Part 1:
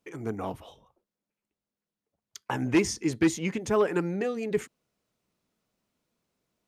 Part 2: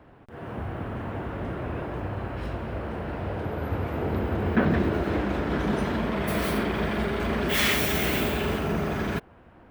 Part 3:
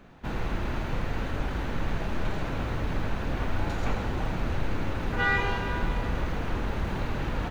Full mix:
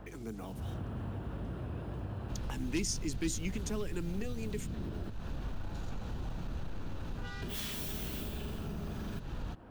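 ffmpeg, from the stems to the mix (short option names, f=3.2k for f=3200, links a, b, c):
-filter_complex "[0:a]highpass=190,aeval=exprs='val(0)+0.00501*(sin(2*PI*50*n/s)+sin(2*PI*2*50*n/s)/2+sin(2*PI*3*50*n/s)/3+sin(2*PI*4*50*n/s)/4+sin(2*PI*5*50*n/s)/5)':c=same,acrusher=bits=8:mix=0:aa=0.5,volume=-2dB,asplit=2[a][b];[1:a]volume=0.5dB,asplit=3[c][d][e];[c]atrim=end=5.1,asetpts=PTS-STARTPTS,afade=t=out:st=5.096:d=0.004:c=hsin[f];[d]atrim=start=5.1:end=7.42,asetpts=PTS-STARTPTS,volume=0[g];[e]atrim=start=7.42,asetpts=PTS-STARTPTS,afade=t=in:d=0.004:c=hsin[h];[f][g][h]concat=n=3:v=0:a=1[i];[2:a]asoftclip=type=tanh:threshold=-19.5dB,adelay=2050,volume=-3dB[j];[b]apad=whole_len=427868[k];[i][k]sidechaincompress=threshold=-42dB:ratio=8:attack=16:release=257[l];[l][j]amix=inputs=2:normalize=0,equalizer=f=2.1k:w=3.2:g=-8,acompressor=threshold=-34dB:ratio=6,volume=0dB[m];[a][m]amix=inputs=2:normalize=0,acrossover=split=240|3000[n][o][p];[o]acompressor=threshold=-50dB:ratio=3[q];[n][q][p]amix=inputs=3:normalize=0"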